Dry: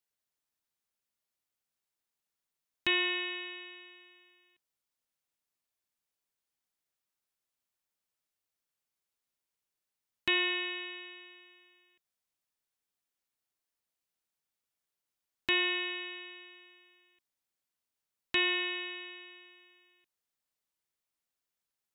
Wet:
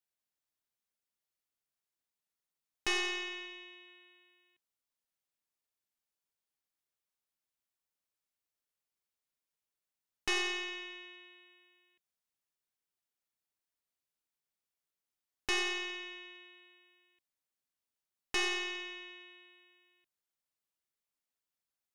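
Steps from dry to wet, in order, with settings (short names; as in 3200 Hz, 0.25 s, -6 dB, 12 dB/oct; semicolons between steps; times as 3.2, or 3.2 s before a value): tracing distortion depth 0.097 ms; 3.46–3.88 bell 1500 Hz -6.5 dB 0.39 oct; gain -4 dB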